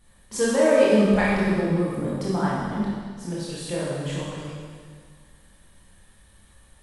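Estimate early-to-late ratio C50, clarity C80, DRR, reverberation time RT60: -3.0 dB, 0.0 dB, -7.5 dB, 1.8 s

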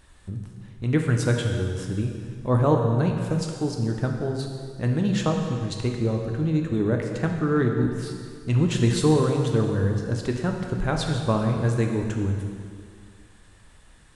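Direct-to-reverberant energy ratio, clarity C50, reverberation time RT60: 2.0 dB, 3.5 dB, 2.1 s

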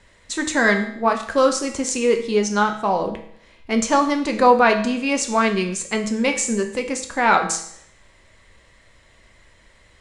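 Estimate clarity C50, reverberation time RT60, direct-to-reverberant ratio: 9.0 dB, 0.65 s, 4.0 dB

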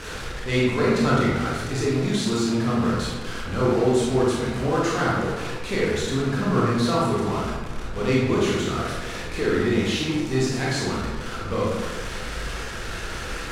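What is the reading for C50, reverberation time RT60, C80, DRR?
-1.0 dB, 1.4 s, 2.0 dB, -5.5 dB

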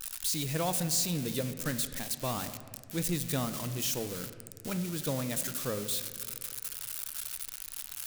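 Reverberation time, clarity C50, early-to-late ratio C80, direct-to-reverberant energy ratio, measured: 2.0 s, 11.0 dB, 12.0 dB, 9.0 dB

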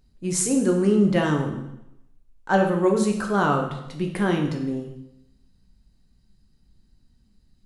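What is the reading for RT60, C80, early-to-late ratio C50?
0.85 s, 9.0 dB, 6.5 dB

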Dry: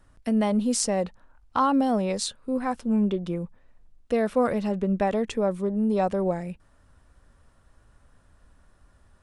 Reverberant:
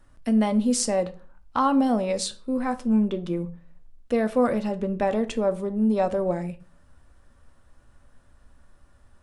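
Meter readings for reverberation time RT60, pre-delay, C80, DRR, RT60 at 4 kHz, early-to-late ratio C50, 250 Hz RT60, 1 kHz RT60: 0.40 s, 3 ms, 22.0 dB, 9.0 dB, 0.30 s, 17.5 dB, 0.55 s, 0.40 s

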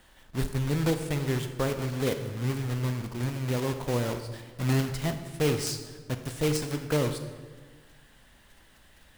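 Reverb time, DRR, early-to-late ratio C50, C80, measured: 1.4 s, 7.0 dB, 8.5 dB, 10.0 dB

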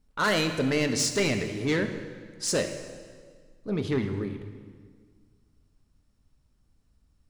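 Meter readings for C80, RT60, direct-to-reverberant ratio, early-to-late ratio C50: 9.5 dB, 1.7 s, 6.0 dB, 8.5 dB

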